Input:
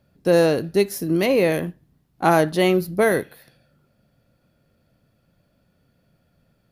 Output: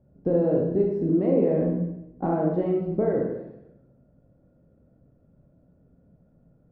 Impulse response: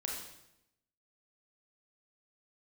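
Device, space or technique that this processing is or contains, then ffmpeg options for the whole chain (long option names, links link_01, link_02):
television next door: -filter_complex "[0:a]acompressor=threshold=-24dB:ratio=4,lowpass=550[link_01];[1:a]atrim=start_sample=2205[link_02];[link_01][link_02]afir=irnorm=-1:irlink=0,asettb=1/sr,asplit=3[link_03][link_04][link_05];[link_03]atrim=end=1.614[link_06];[link_04]atrim=start=1.61:end=2.26,asetpts=PTS-STARTPTS,afade=type=in:duration=0.004:curve=qsin,afade=type=out:start_time=0.646:duration=0.004:curve=qsin,asplit=2[link_07][link_08];[link_08]adelay=16,volume=-4dB[link_09];[link_07][link_09]amix=inputs=2:normalize=0,atrim=end_sample=28665[link_10];[link_05]atrim=start=2.256[link_11];[link_06][link_10]acrossfade=duration=0.004:curve1=hsin:curve2=qsin[link_12];[link_12][link_11]acrossfade=duration=0.004:curve1=qsin:curve2=hsin,volume=4.5dB"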